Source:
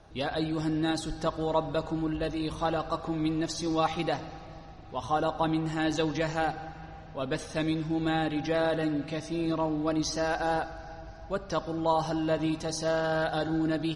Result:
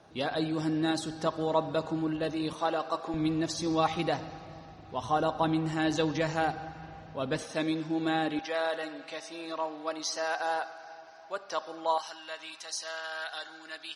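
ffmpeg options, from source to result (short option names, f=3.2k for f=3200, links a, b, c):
-af "asetnsamples=n=441:p=0,asendcmd='2.53 highpass f 330;3.14 highpass f 78;7.43 highpass f 220;8.39 highpass f 660;11.98 highpass f 1500',highpass=140"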